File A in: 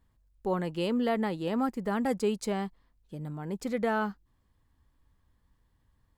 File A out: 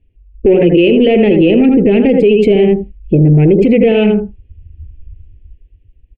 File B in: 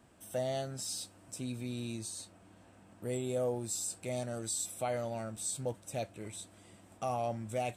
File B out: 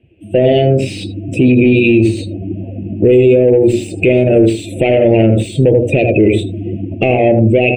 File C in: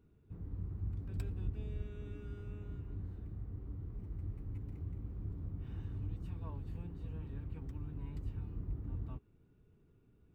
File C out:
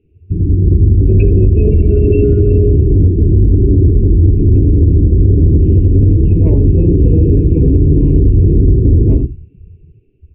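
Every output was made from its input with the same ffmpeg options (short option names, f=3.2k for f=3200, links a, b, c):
-filter_complex "[0:a]equalizer=f=80:t=o:w=0.23:g=5,asplit=2[a][b];[b]adelay=80,lowpass=f=3.1k:p=1,volume=-7dB,asplit=2[c][d];[d]adelay=80,lowpass=f=3.1k:p=1,volume=0.17,asplit=2[e][f];[f]adelay=80,lowpass=f=3.1k:p=1,volume=0.17[g];[c][e][g]amix=inputs=3:normalize=0[h];[a][h]amix=inputs=2:normalize=0,dynaudnorm=f=110:g=17:m=5dB,bandreject=f=60:t=h:w=6,bandreject=f=120:t=h:w=6,bandreject=f=180:t=h:w=6,bandreject=f=240:t=h:w=6,bandreject=f=300:t=h:w=6,bandreject=f=360:t=h:w=6,bandreject=f=420:t=h:w=6,bandreject=f=480:t=h:w=6,bandreject=f=540:t=h:w=6,bandreject=f=600:t=h:w=6,afftdn=nr=26:nf=-46,acompressor=threshold=-33dB:ratio=12,asoftclip=type=tanh:threshold=-33dB,firequalizer=gain_entry='entry(230,0);entry(360,10);entry(1100,-29);entry(2600,11);entry(3800,-15);entry(5600,-29)':delay=0.05:min_phase=1,alimiter=level_in=33dB:limit=-1dB:release=50:level=0:latency=1,volume=-1dB"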